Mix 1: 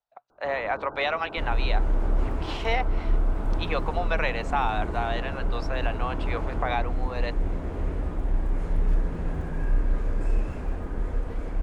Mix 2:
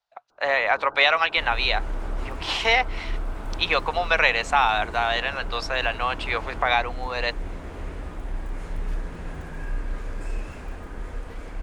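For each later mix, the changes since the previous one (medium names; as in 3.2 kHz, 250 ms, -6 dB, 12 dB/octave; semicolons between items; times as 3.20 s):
speech +7.0 dB; master: add tilt shelf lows -6 dB, about 1.1 kHz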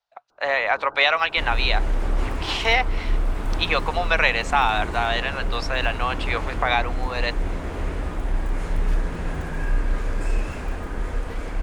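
second sound +7.0 dB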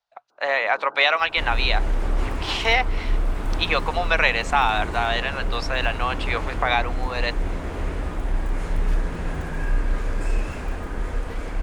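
first sound: add high-pass 220 Hz 12 dB/octave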